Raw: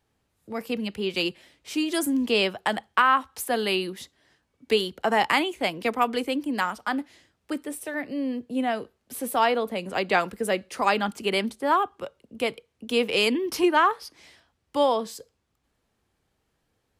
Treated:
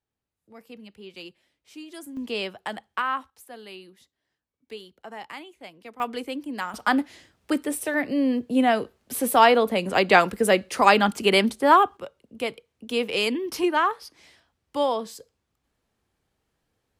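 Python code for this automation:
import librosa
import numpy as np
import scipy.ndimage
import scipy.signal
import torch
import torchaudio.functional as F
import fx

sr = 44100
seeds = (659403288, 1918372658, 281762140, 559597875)

y = fx.gain(x, sr, db=fx.steps((0.0, -15.0), (2.17, -7.0), (3.3, -17.0), (6.0, -5.0), (6.74, 6.0), (11.97, -2.0)))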